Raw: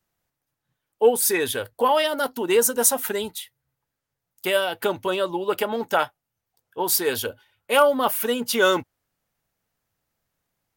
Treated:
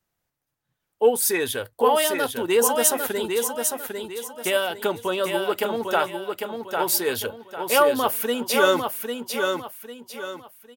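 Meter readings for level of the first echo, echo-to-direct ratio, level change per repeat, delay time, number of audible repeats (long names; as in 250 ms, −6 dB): −5.0 dB, −4.5 dB, −9.5 dB, 800 ms, 4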